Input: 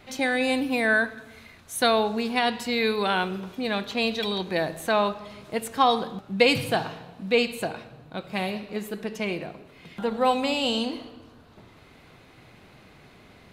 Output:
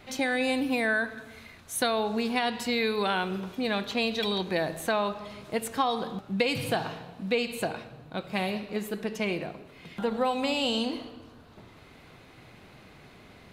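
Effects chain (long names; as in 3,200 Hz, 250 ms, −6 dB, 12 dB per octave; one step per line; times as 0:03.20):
downward compressor 5 to 1, threshold −23 dBFS, peak gain reduction 9.5 dB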